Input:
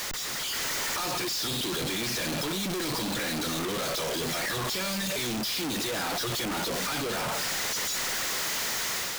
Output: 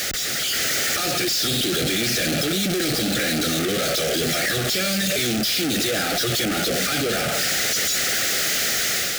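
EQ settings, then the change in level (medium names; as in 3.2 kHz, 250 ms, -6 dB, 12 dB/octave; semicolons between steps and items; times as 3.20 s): high-pass 40 Hz; Butterworth band-stop 990 Hz, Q 1.9; +8.5 dB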